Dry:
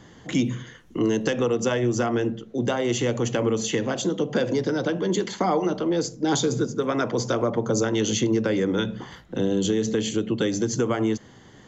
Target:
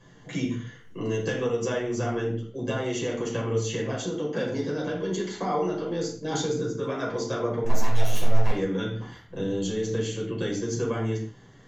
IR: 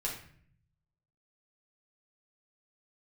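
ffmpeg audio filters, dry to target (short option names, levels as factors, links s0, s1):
-filter_complex "[0:a]asettb=1/sr,asplit=3[s0][s1][s2];[s0]atrim=end=7.644[s3];[s1]atrim=start=7.64:end=8.51,asetpts=PTS-STARTPTS,afade=t=in:d=0.004:c=qsin,afade=t=out:st=0.866:d=0.004:c=qsin,aeval=exprs='abs(val(0))':c=same[s4];[s2]atrim=start=8.506[s5];[s3][s4]acrossfade=d=0.004:c1=hsin:c2=qsin[s6];[s6][s5]acrossfade=d=0.004:c1=qsin:c2=hsin[s7];[1:a]atrim=start_sample=2205,afade=t=out:st=0.23:d=0.01,atrim=end_sample=10584[s8];[s7][s8]afir=irnorm=-1:irlink=0,volume=0.422"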